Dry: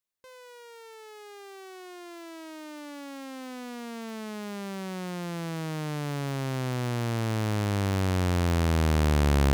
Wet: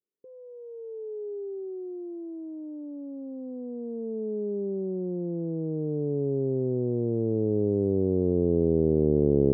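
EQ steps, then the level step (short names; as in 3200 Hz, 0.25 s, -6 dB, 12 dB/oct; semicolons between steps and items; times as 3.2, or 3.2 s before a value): Butterworth band-pass 260 Hz, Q 0.56; synth low-pass 420 Hz, resonance Q 4.9; 0.0 dB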